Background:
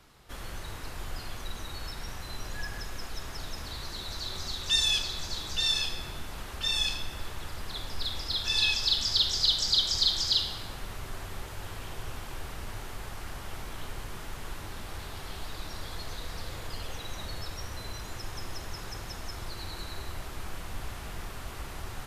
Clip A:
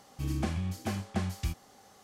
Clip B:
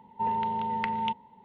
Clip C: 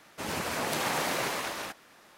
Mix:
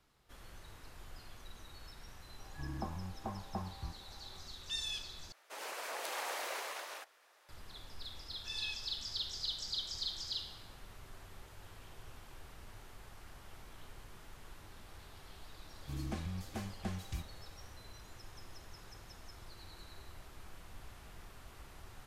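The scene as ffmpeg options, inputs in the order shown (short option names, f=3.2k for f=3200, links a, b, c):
-filter_complex "[1:a]asplit=2[a][b];[0:a]volume=-14dB[c];[a]lowpass=f=960:t=q:w=4.7[d];[3:a]highpass=f=440:w=0.5412,highpass=f=440:w=1.3066[e];[c]asplit=2[f][g];[f]atrim=end=5.324[h];[e]atrim=end=2.17,asetpts=PTS-STARTPTS,volume=-9.5dB[i];[g]atrim=start=7.486[j];[d]atrim=end=2.03,asetpts=PTS-STARTPTS,volume=-11dB,afade=t=in:d=0.004:c=hsin,afade=t=out:st=2.026:d=0.004:c=hsin,adelay=2390[k];[b]atrim=end=2.03,asetpts=PTS-STARTPTS,volume=-8.5dB,afade=t=in:d=0.004:c=hsin,afade=t=out:st=2.026:d=0.004:c=hsin,adelay=15690[l];[h][i]acrossfade=d=0.004:c1=hsin:c2=hsin[m];[m][j]acrossfade=d=0.004:c1=hsin:c2=hsin[n];[n][k][l]amix=inputs=3:normalize=0"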